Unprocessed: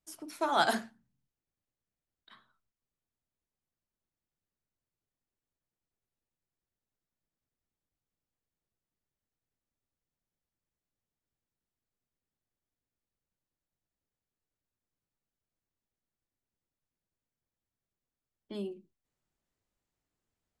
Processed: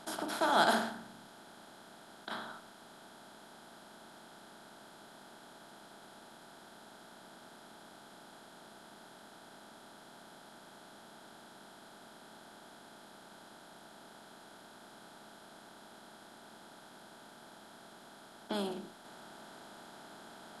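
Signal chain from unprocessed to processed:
compressor on every frequency bin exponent 0.4
level −3 dB

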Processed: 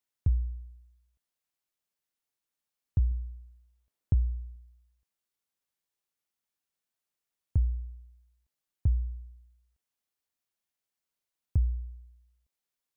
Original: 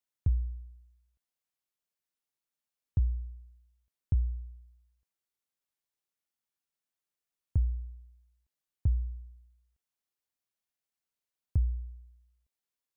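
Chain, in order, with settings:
0:03.11–0:04.56: parametric band 420 Hz +5 dB 2.9 octaves
level +1.5 dB

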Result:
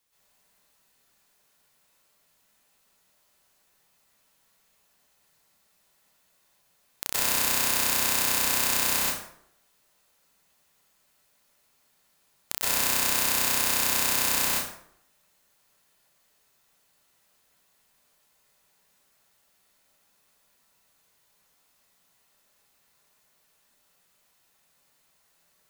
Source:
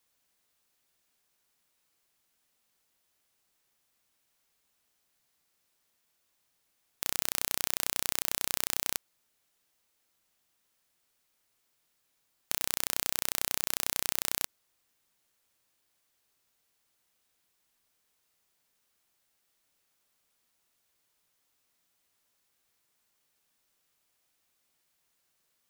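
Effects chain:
dense smooth reverb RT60 0.69 s, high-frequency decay 0.65×, pre-delay 110 ms, DRR −9.5 dB

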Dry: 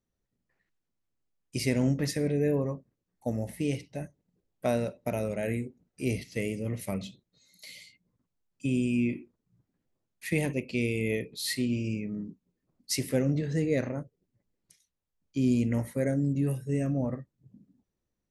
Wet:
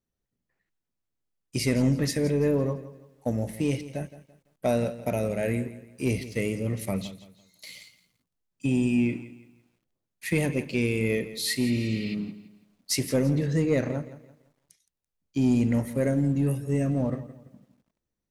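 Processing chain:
healed spectral selection 0:11.64–0:12.12, 1,200–5,300 Hz before
leveller curve on the samples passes 1
feedback echo at a low word length 168 ms, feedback 35%, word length 10 bits, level −15 dB

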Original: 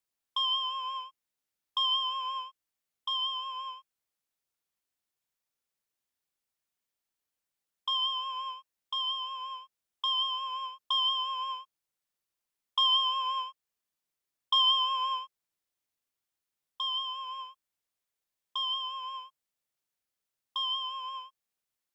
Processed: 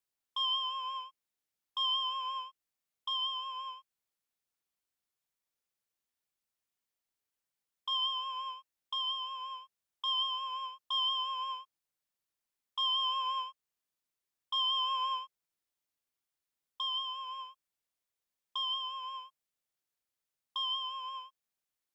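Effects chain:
brickwall limiter −23 dBFS, peak gain reduction 8 dB
level −2.5 dB

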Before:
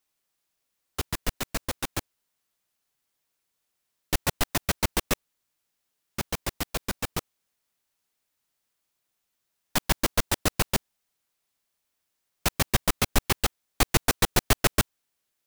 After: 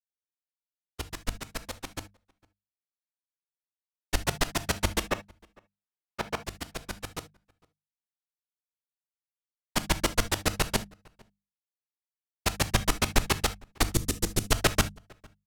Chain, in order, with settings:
0:05.10–0:06.36: mid-hump overdrive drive 25 dB, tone 1,100 Hz, clips at −11 dBFS
0:13.82–0:14.52: Chebyshev band-stop filter 320–7,300 Hz, order 2
downward expander −23 dBFS
mains-hum notches 50/100/150/200 Hz
slap from a distant wall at 78 metres, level −27 dB
reverb whose tail is shaped and stops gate 90 ms flat, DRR 12 dB
linearly interpolated sample-rate reduction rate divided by 2×

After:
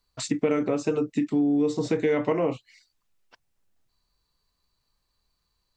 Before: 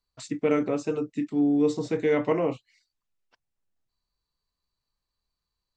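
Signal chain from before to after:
downward compressor 4 to 1, threshold −31 dBFS, peak gain reduction 11.5 dB
level +9 dB

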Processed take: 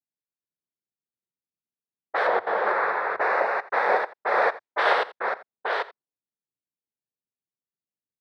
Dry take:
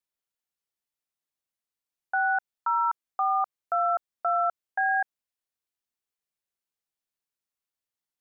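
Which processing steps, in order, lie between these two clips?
delay that plays each chunk backwards 485 ms, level −2.5 dB
cochlear-implant simulation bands 6
0:02.27–0:03.21: spectral tilt −3.5 dB per octave
low-pass that shuts in the quiet parts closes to 360 Hz, open at −22 dBFS
single-tap delay 85 ms −18 dB
level +1.5 dB

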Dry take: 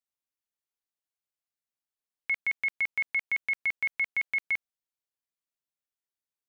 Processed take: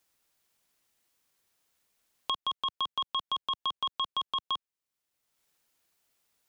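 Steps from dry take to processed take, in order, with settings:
ring modulation 1,100 Hz
multiband upward and downward compressor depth 70%

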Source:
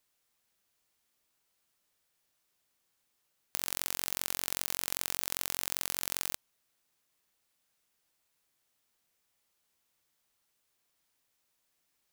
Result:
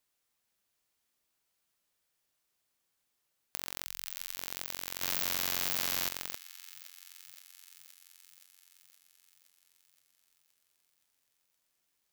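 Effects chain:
0:03.84–0:04.36: guitar amp tone stack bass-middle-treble 10-0-10
delay with a high-pass on its return 520 ms, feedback 66%, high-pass 1,800 Hz, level −11.5 dB
dynamic equaliser 10,000 Hz, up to −7 dB, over −54 dBFS, Q 0.91
0:05.02–0:06.09: leveller curve on the samples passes 5
level −3 dB

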